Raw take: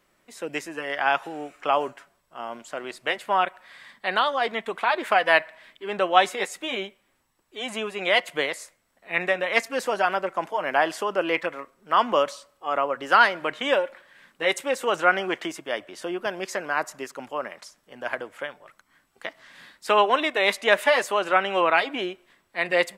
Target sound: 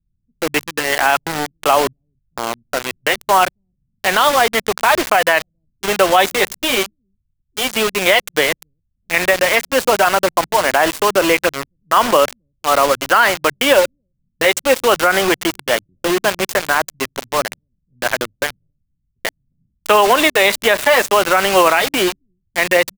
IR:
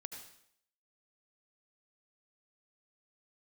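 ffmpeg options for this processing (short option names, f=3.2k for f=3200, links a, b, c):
-filter_complex "[0:a]acrossover=split=130[a][b];[a]aecho=1:1:269:0.0944[c];[b]acrusher=bits=4:mix=0:aa=0.000001[d];[c][d]amix=inputs=2:normalize=0,alimiter=level_in=12.5dB:limit=-1dB:release=50:level=0:latency=1,volume=-1dB"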